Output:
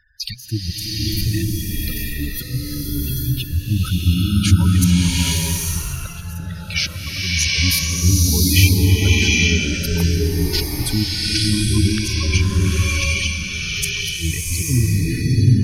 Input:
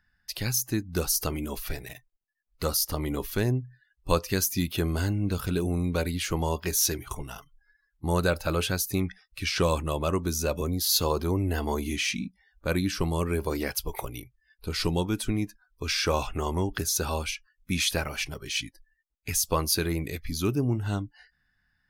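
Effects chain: flipped gate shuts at -16 dBFS, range -25 dB; passive tone stack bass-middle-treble 5-5-5; harmonic-percussive split percussive -11 dB; bell 980 Hz -3.5 dB 1.5 oct; tempo 1.4×; spectral gate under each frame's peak -15 dB strong; maximiser +35.5 dB; bloom reverb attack 0.84 s, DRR -6.5 dB; gain -8.5 dB

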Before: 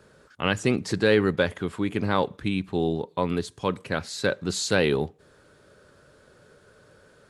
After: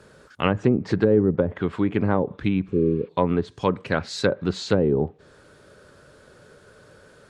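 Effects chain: treble ducked by the level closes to 450 Hz, closed at -18 dBFS; spectral repair 2.7–3.06, 530–5200 Hz before; gain +4.5 dB

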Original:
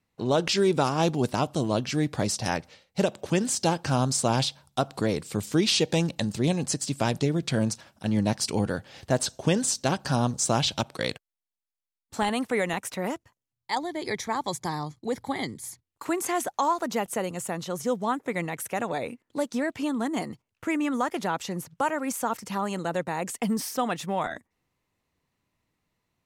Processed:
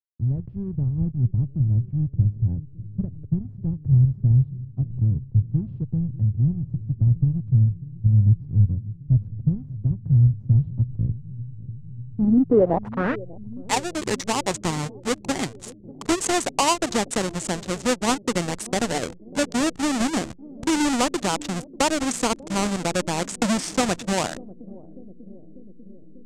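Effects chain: half-waves squared off; in parallel at -2.5 dB: compressor 6:1, threshold -26 dBFS, peak gain reduction 11.5 dB; on the sum: backlash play -23.5 dBFS; low-pass sweep 110 Hz -> 7800 Hz, 12.03–13.68; analogue delay 0.593 s, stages 2048, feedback 74%, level -18 dB

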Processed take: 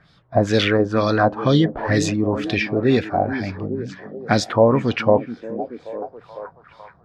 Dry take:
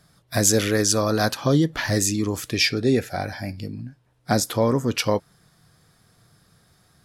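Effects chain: delay with a stepping band-pass 0.428 s, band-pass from 220 Hz, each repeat 0.7 oct, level -7.5 dB; LFO low-pass sine 2.1 Hz 690–3900 Hz; gain +2.5 dB

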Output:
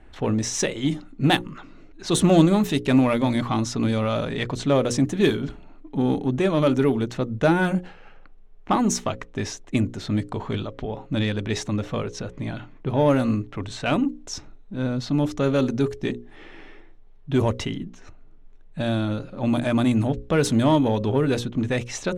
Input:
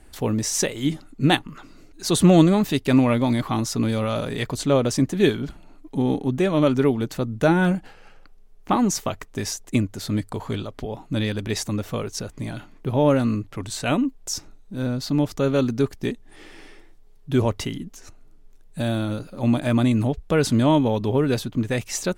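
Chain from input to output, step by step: notch 4700 Hz, Q 8.8; low-pass opened by the level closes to 2800 Hz, open at -14 dBFS; notches 60/120/180/240/300/360/420/480/540 Hz; in parallel at -4.5 dB: soft clip -20 dBFS, distortion -9 dB; on the sum: gain -2.5 dB

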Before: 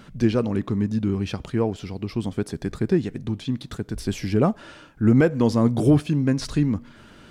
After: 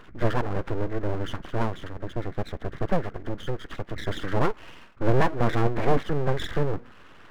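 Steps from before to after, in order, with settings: nonlinear frequency compression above 1200 Hz 4:1; 1.87–2.83 dynamic EQ 1100 Hz, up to -6 dB, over -45 dBFS, Q 0.86; full-wave rectifier; gain -1 dB

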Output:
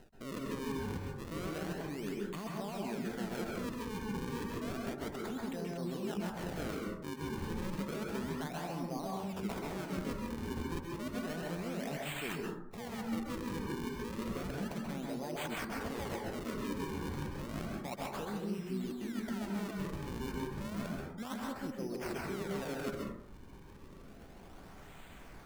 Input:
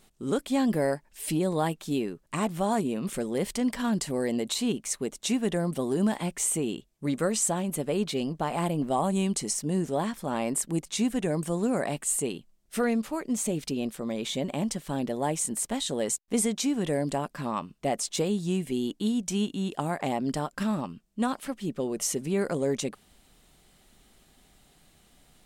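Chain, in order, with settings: reverb removal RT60 0.55 s; in parallel at -1.5 dB: level quantiser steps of 14 dB; on the sum: limiter -20.5 dBFS, peak gain reduction 10 dB; reverse; compressor 12:1, threshold -42 dBFS, peak gain reduction 18.5 dB; reverse; decimation with a swept rate 38×, swing 160% 0.31 Hz; plate-style reverb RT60 0.71 s, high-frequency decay 0.35×, pre-delay 0.12 s, DRR -2 dB; gain +2.5 dB

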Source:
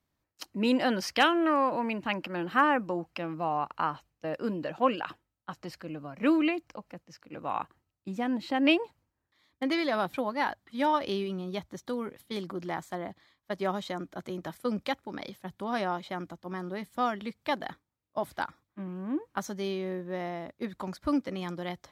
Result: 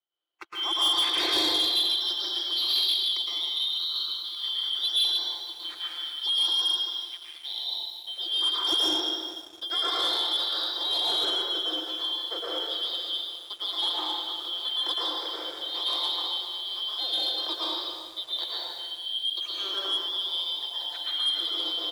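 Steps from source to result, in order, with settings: four-band scrambler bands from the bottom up 3412; steep high-pass 310 Hz 96 dB/oct; tape spacing loss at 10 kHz 35 dB; comb 5.8 ms, depth 37%; thin delay 0.147 s, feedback 49%, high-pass 2800 Hz, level -10 dB; plate-style reverb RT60 1.8 s, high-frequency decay 0.75×, pre-delay 0.1 s, DRR -7 dB; sample leveller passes 2

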